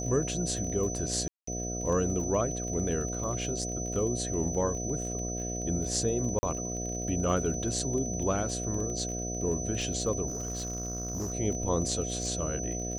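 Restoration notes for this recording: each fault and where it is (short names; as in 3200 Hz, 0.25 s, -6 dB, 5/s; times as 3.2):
buzz 60 Hz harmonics 12 -36 dBFS
crackle 22/s -36 dBFS
tone 6000 Hz -36 dBFS
1.28–1.47 gap 0.194 s
6.39–6.43 gap 40 ms
10.27–11.34 clipped -30 dBFS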